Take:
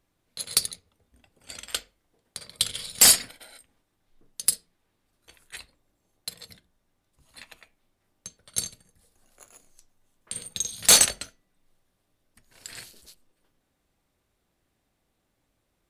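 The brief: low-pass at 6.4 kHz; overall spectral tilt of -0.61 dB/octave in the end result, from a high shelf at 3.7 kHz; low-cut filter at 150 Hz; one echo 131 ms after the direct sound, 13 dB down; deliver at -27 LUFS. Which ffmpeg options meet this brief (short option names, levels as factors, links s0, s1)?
-af "highpass=150,lowpass=6400,highshelf=f=3700:g=3.5,aecho=1:1:131:0.224,volume=0.631"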